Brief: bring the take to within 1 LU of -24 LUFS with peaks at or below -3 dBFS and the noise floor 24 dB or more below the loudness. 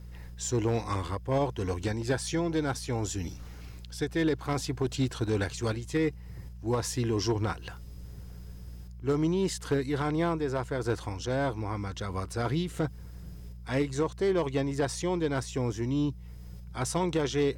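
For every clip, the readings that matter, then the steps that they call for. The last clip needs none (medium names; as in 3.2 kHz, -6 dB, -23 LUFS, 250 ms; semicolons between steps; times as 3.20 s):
clipped samples 0.5%; clipping level -20.0 dBFS; hum 60 Hz; highest harmonic 180 Hz; hum level -42 dBFS; loudness -30.5 LUFS; peak level -20.0 dBFS; loudness target -24.0 LUFS
-> clip repair -20 dBFS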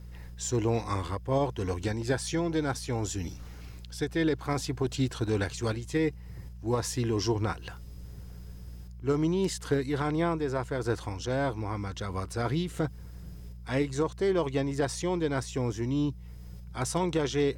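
clipped samples 0.0%; hum 60 Hz; highest harmonic 180 Hz; hum level -42 dBFS
-> de-hum 60 Hz, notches 3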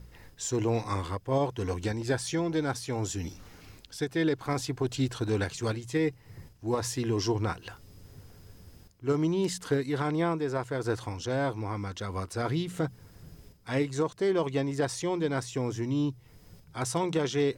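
hum not found; loudness -30.5 LUFS; peak level -16.0 dBFS; loudness target -24.0 LUFS
-> trim +6.5 dB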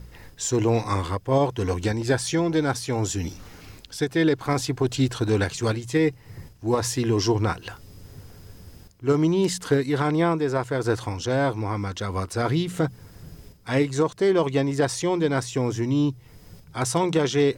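loudness -24.0 LUFS; peak level -9.5 dBFS; noise floor -50 dBFS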